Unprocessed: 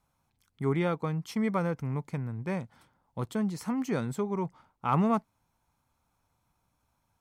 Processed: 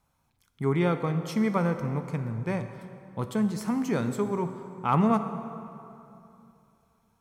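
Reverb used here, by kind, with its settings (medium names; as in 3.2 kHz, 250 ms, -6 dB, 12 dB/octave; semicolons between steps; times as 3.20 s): plate-style reverb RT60 2.8 s, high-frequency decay 0.65×, DRR 8 dB; trim +2.5 dB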